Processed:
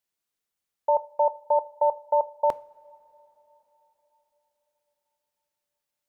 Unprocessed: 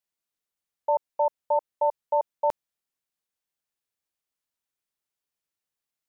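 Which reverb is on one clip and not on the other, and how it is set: two-slope reverb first 0.41 s, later 4.4 s, from -19 dB, DRR 16 dB; trim +2.5 dB

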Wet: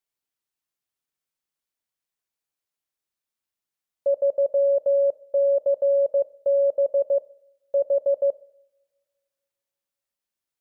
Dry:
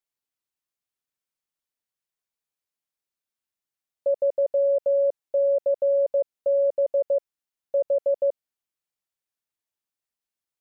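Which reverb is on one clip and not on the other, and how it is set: two-slope reverb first 0.67 s, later 2.4 s, from -27 dB, DRR 17 dB; trim +1 dB

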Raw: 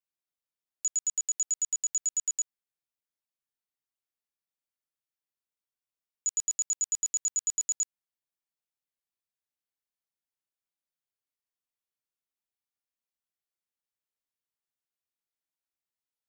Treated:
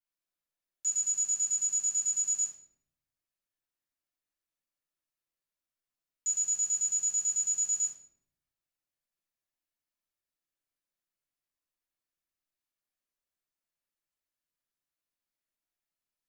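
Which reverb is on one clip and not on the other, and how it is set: simulated room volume 140 m³, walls mixed, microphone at 2.9 m; trim -9.5 dB

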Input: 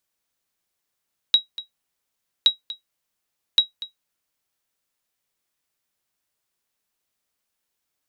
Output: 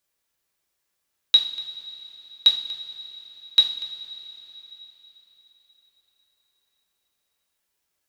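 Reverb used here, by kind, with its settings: two-slope reverb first 0.45 s, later 4.3 s, from -17 dB, DRR -1 dB; trim -1 dB

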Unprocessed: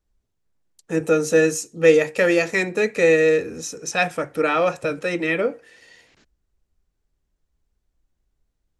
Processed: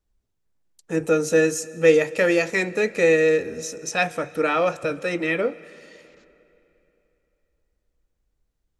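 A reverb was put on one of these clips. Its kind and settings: algorithmic reverb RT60 3.2 s, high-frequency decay 0.85×, pre-delay 100 ms, DRR 20 dB; trim -1.5 dB

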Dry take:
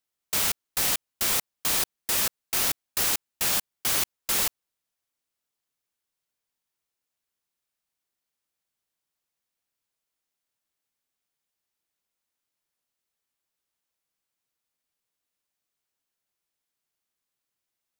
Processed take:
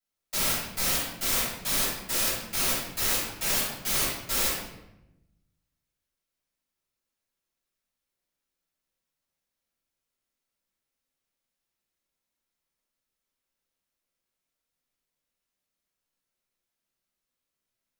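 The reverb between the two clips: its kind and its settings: simulated room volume 320 m³, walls mixed, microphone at 6.9 m; trim -14.5 dB

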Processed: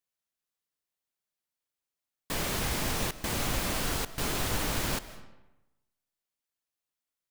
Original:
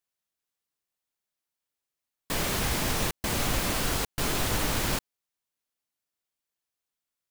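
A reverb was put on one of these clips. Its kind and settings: algorithmic reverb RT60 1 s, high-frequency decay 0.7×, pre-delay 115 ms, DRR 15 dB; trim -3 dB

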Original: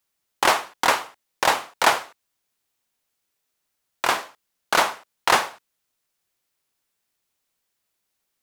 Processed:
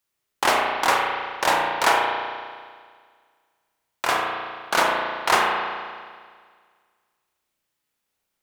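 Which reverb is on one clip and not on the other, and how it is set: spring tank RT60 1.8 s, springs 34 ms, chirp 60 ms, DRR -1 dB; trim -2.5 dB

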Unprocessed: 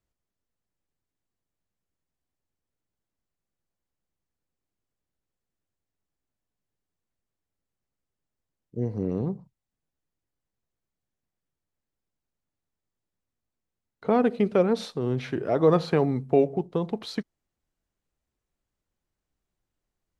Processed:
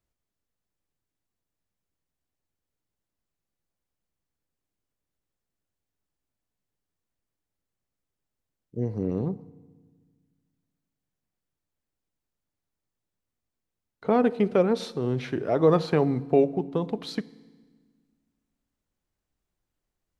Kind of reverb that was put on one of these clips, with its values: FDN reverb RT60 1.5 s, low-frequency decay 1.45×, high-frequency decay 0.9×, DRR 18.5 dB

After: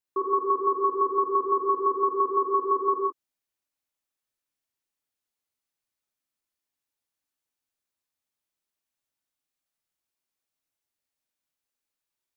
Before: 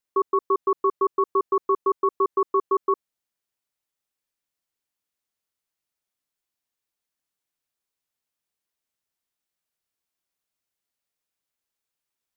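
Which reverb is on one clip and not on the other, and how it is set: gated-style reverb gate 190 ms flat, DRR -2 dB; trim -6 dB

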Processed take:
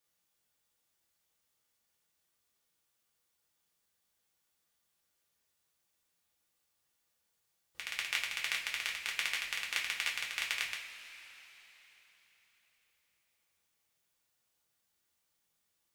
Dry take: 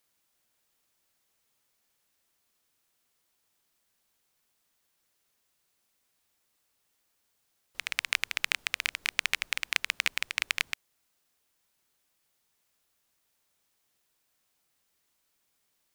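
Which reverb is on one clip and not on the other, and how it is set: two-slope reverb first 0.33 s, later 4.1 s, from -18 dB, DRR -3 dB; trim -9.5 dB

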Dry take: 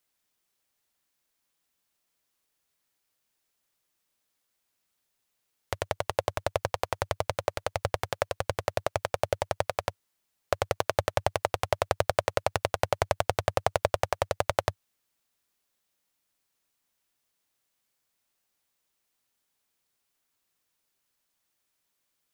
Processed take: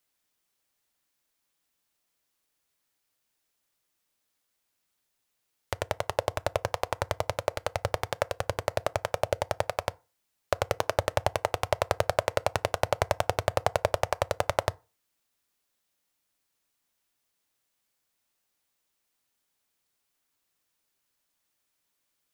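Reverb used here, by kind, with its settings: FDN reverb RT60 0.32 s, low-frequency decay 0.95×, high-frequency decay 0.6×, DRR 18.5 dB

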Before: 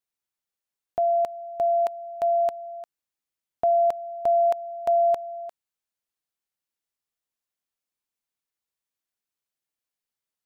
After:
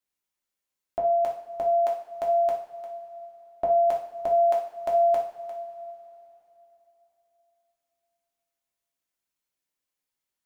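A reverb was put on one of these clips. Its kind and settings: two-slope reverb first 0.48 s, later 3.5 s, from -19 dB, DRR -2.5 dB; trim -2 dB

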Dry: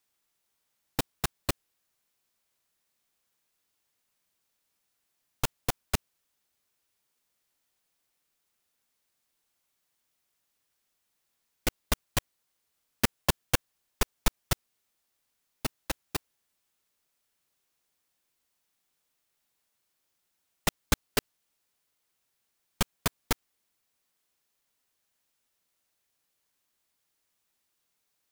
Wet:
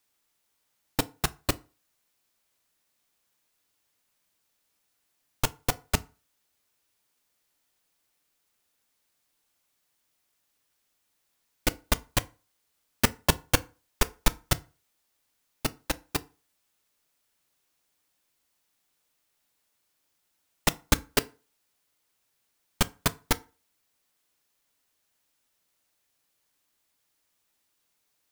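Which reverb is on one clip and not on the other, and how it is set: FDN reverb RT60 0.34 s, low-frequency decay 0.95×, high-frequency decay 0.7×, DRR 13.5 dB; trim +3 dB

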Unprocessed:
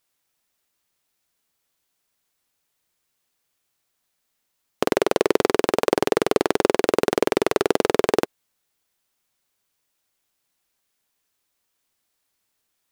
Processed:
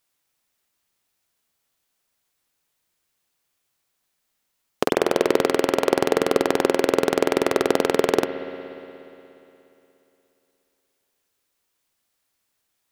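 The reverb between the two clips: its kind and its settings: spring tank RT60 3.1 s, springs 59 ms, chirp 50 ms, DRR 8 dB

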